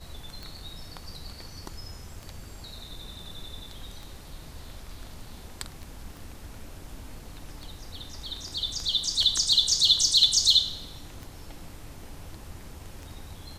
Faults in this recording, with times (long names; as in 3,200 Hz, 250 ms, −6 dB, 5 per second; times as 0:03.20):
scratch tick 33 1/3 rpm
0:06.17: click